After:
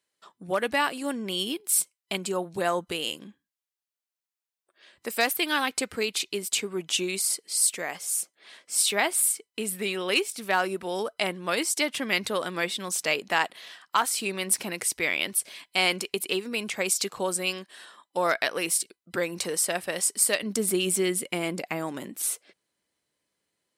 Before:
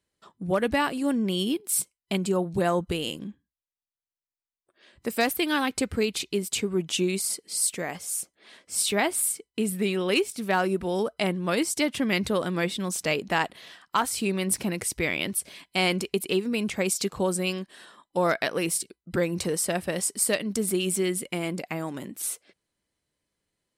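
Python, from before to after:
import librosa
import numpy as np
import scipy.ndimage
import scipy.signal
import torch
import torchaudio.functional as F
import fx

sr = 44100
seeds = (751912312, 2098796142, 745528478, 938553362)

y = fx.highpass(x, sr, hz=fx.steps((0.0, 740.0), (20.43, 280.0)), slope=6)
y = y * librosa.db_to_amplitude(2.5)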